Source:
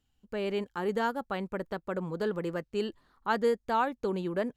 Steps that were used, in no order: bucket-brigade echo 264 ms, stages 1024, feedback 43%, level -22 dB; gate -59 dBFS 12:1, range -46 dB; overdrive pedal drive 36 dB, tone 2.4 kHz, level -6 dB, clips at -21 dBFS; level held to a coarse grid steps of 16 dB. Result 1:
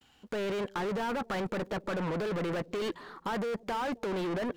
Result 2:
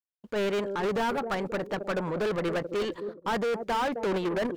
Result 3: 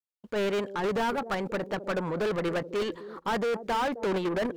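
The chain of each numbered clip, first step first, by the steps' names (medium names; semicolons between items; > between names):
overdrive pedal > gate > level held to a coarse grid > bucket-brigade echo; gate > level held to a coarse grid > bucket-brigade echo > overdrive pedal; bucket-brigade echo > gate > level held to a coarse grid > overdrive pedal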